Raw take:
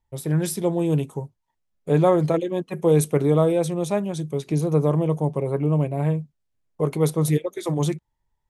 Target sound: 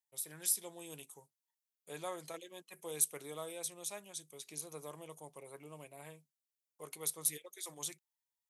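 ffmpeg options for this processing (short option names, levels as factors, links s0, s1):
-af "aderivative,volume=0.708"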